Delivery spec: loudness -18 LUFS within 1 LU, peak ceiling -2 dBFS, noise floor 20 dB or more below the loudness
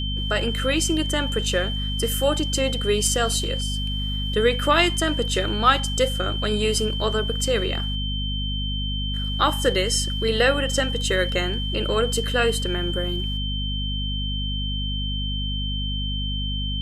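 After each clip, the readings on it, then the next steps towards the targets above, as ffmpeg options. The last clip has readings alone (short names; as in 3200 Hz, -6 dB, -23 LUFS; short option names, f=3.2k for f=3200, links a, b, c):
hum 50 Hz; harmonics up to 250 Hz; hum level -25 dBFS; steady tone 3100 Hz; tone level -29 dBFS; loudness -23.0 LUFS; peak -3.5 dBFS; loudness target -18.0 LUFS
-> -af "bandreject=f=50:t=h:w=4,bandreject=f=100:t=h:w=4,bandreject=f=150:t=h:w=4,bandreject=f=200:t=h:w=4,bandreject=f=250:t=h:w=4"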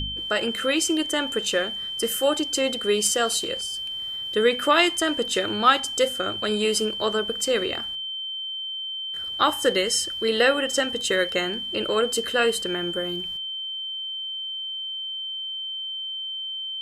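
hum none; steady tone 3100 Hz; tone level -29 dBFS
-> -af "bandreject=f=3.1k:w=30"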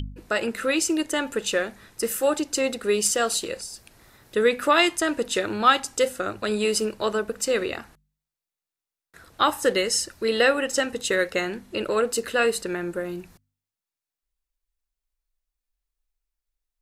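steady tone none; loudness -24.0 LUFS; peak -5.0 dBFS; loudness target -18.0 LUFS
-> -af "volume=6dB,alimiter=limit=-2dB:level=0:latency=1"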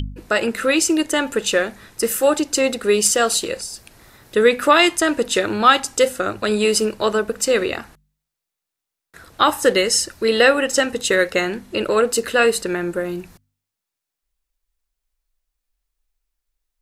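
loudness -18.0 LUFS; peak -2.0 dBFS; noise floor -84 dBFS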